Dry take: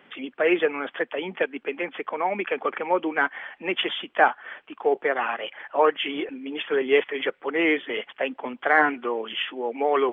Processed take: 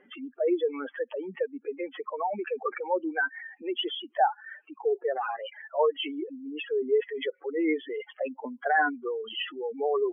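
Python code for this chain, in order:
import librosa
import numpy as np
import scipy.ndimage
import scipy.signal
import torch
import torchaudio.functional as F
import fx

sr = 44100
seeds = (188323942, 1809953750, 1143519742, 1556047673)

y = fx.spec_expand(x, sr, power=3.1)
y = y * 10.0 ** (-4.0 / 20.0)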